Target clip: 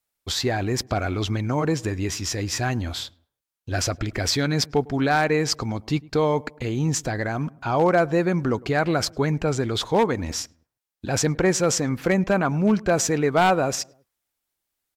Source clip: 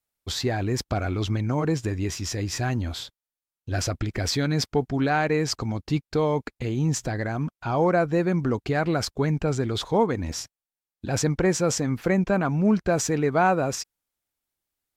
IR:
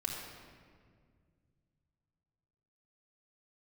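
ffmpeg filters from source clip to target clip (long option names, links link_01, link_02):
-filter_complex "[0:a]lowshelf=frequency=360:gain=-4.5,aeval=exprs='0.188*(abs(mod(val(0)/0.188+3,4)-2)-1)':channel_layout=same,asplit=2[link_01][link_02];[link_02]adelay=105,lowpass=frequency=1300:poles=1,volume=-23dB,asplit=2[link_03][link_04];[link_04]adelay=105,lowpass=frequency=1300:poles=1,volume=0.5,asplit=2[link_05][link_06];[link_06]adelay=105,lowpass=frequency=1300:poles=1,volume=0.5[link_07];[link_03][link_05][link_07]amix=inputs=3:normalize=0[link_08];[link_01][link_08]amix=inputs=2:normalize=0,volume=4dB"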